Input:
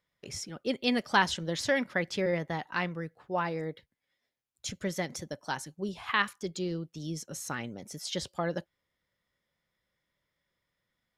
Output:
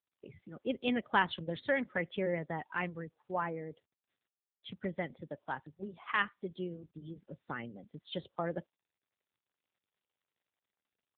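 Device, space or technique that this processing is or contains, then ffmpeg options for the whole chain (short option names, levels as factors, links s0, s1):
mobile call with aggressive noise cancelling: -af "highpass=f=110:p=1,afftdn=nr=16:nf=-43,volume=0.708" -ar 8000 -c:a libopencore_amrnb -b:a 7950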